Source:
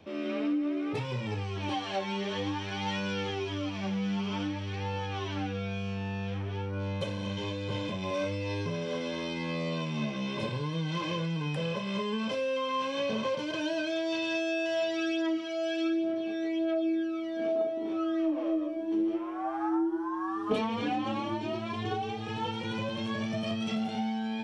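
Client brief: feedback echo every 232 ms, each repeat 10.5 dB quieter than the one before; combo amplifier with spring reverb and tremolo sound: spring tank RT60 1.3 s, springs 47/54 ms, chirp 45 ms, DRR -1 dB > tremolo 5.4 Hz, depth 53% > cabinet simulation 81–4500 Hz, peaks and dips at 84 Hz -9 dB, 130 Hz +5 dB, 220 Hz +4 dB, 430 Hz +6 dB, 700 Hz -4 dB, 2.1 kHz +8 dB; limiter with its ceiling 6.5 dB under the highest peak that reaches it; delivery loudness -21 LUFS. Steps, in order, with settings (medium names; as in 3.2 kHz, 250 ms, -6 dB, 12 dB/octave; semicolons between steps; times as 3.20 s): peak limiter -25 dBFS; feedback delay 232 ms, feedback 30%, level -10.5 dB; spring tank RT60 1.3 s, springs 47/54 ms, chirp 45 ms, DRR -1 dB; tremolo 5.4 Hz, depth 53%; cabinet simulation 81–4500 Hz, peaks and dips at 84 Hz -9 dB, 130 Hz +5 dB, 220 Hz +4 dB, 430 Hz +6 dB, 700 Hz -4 dB, 2.1 kHz +8 dB; trim +10.5 dB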